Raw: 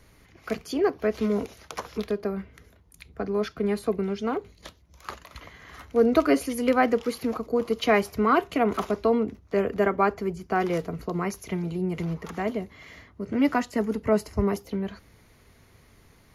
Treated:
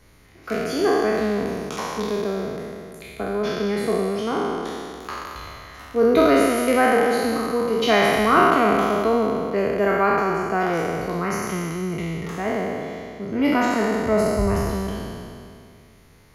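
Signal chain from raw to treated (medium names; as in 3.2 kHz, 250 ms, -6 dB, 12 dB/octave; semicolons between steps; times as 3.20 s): spectral sustain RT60 2.41 s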